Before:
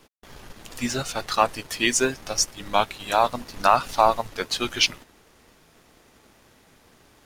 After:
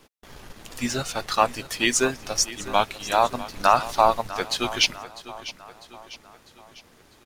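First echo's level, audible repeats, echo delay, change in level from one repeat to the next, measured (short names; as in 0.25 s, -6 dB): -16.0 dB, 4, 0.649 s, -6.0 dB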